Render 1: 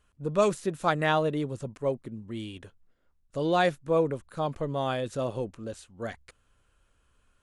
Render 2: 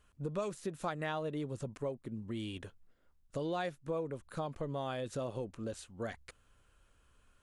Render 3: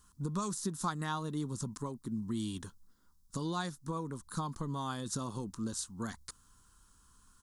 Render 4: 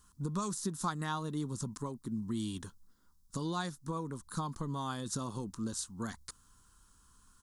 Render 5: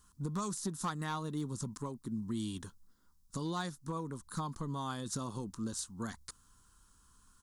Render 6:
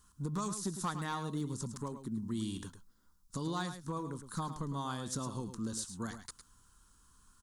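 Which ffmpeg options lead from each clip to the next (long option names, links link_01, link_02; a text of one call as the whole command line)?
ffmpeg -i in.wav -af "acompressor=threshold=-36dB:ratio=4" out.wav
ffmpeg -i in.wav -af "firequalizer=gain_entry='entry(130,0);entry(190,6);entry(590,-15);entry(980,6);entry(2400,-12);entry(3700,4);entry(5200,11)':delay=0.05:min_phase=1,volume=2dB" out.wav
ffmpeg -i in.wav -af anull out.wav
ffmpeg -i in.wav -af "volume=28dB,asoftclip=hard,volume=-28dB,volume=-1dB" out.wav
ffmpeg -i in.wav -af "aecho=1:1:107:0.316" out.wav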